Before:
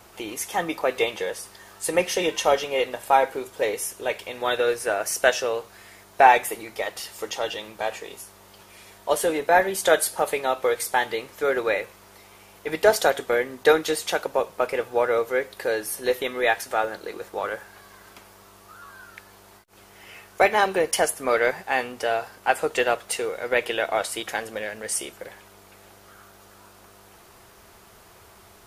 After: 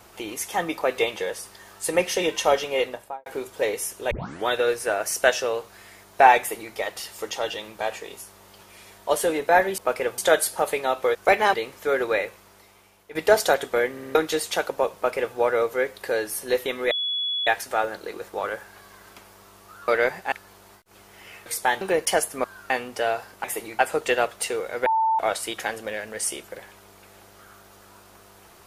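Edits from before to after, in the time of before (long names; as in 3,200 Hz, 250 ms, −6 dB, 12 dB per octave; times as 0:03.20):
0:02.81–0:03.26: fade out and dull
0:04.11: tape start 0.36 s
0:06.39–0:06.74: duplicate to 0:22.48
0:10.75–0:11.10: swap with 0:20.28–0:20.67
0:11.73–0:12.71: fade out, to −12.5 dB
0:13.47: stutter in place 0.06 s, 4 plays
0:14.51–0:14.91: duplicate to 0:09.78
0:16.47: insert tone 3,390 Hz −23.5 dBFS 0.56 s
0:18.88–0:19.14: swap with 0:21.30–0:21.74
0:23.55–0:23.88: beep over 891 Hz −18 dBFS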